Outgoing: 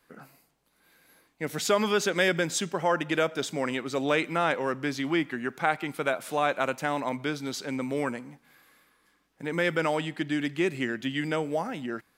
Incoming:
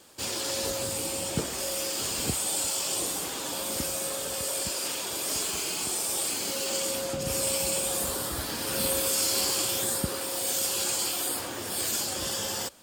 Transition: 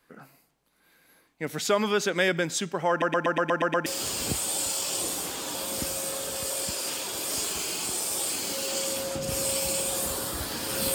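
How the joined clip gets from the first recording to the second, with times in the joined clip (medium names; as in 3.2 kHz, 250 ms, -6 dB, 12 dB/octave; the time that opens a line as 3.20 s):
outgoing
2.90 s: stutter in place 0.12 s, 8 plays
3.86 s: go over to incoming from 1.84 s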